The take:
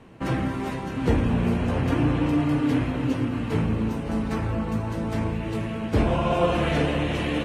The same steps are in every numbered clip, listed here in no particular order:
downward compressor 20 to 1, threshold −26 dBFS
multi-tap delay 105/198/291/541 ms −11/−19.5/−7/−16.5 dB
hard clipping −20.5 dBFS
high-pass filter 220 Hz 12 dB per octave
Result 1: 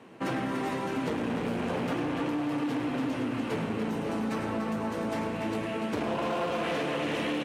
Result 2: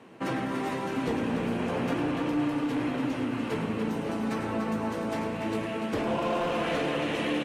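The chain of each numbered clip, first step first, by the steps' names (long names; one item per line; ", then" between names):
multi-tap delay, then hard clipping, then high-pass filter, then downward compressor
high-pass filter, then hard clipping, then downward compressor, then multi-tap delay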